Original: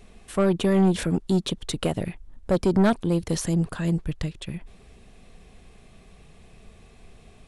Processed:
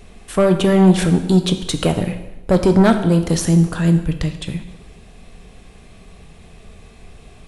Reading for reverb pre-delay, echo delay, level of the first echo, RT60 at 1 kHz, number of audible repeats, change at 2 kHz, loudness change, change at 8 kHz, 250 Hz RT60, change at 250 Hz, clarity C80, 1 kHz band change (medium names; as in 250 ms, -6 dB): 5 ms, no echo, no echo, 1.0 s, no echo, +8.0 dB, +8.0 dB, +7.5 dB, 1.0 s, +8.5 dB, 12.0 dB, +8.0 dB